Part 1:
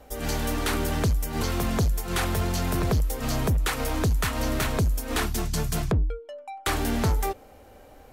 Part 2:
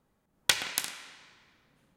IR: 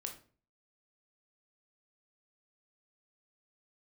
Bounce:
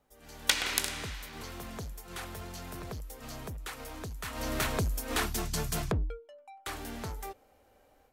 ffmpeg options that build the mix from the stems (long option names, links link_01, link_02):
-filter_complex "[0:a]volume=-12.5dB,afade=type=in:start_time=4.21:duration=0.39:silence=0.298538,afade=type=out:start_time=6.06:duration=0.24:silence=0.354813[link_01];[1:a]alimiter=limit=-13dB:level=0:latency=1:release=447,volume=-0.5dB[link_02];[link_01][link_02]amix=inputs=2:normalize=0,lowshelf=frequency=380:gain=-5.5,dynaudnorm=framelen=260:gausssize=3:maxgain=10dB"